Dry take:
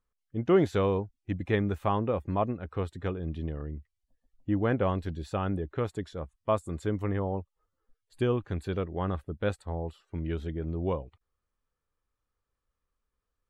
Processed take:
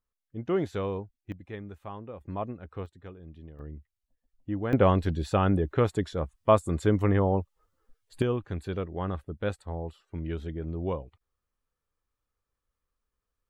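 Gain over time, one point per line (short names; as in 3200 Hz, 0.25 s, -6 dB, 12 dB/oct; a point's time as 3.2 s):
-5 dB
from 1.32 s -13 dB
from 2.21 s -5.5 dB
from 2.86 s -12.5 dB
from 3.59 s -4 dB
from 4.73 s +6.5 dB
from 8.22 s -1 dB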